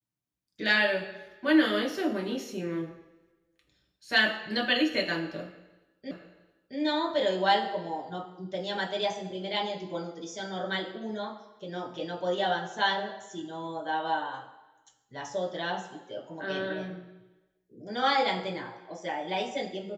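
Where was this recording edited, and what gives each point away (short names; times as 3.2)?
6.11 repeat of the last 0.67 s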